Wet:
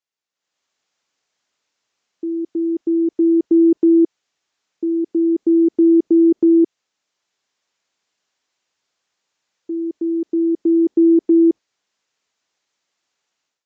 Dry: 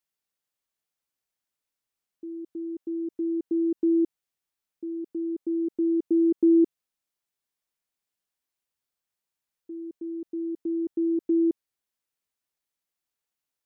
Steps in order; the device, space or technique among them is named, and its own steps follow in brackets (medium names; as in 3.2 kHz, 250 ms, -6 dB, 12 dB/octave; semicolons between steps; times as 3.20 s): high-pass 280 Hz 6 dB/octave; low-bitrate web radio (level rider gain up to 16 dB; peak limiter -8 dBFS, peak gain reduction 5.5 dB; AAC 48 kbps 16 kHz)